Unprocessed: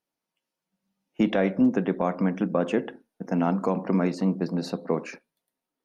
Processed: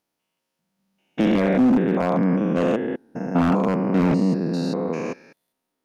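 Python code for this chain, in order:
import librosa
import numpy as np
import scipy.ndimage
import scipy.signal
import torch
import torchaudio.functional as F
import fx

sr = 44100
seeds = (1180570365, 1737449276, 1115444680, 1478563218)

y = fx.spec_steps(x, sr, hold_ms=200)
y = 10.0 ** (-19.5 / 20.0) * (np.abs((y / 10.0 ** (-19.5 / 20.0) + 3.0) % 4.0 - 2.0) - 1.0)
y = y * 10.0 ** (8.0 / 20.0)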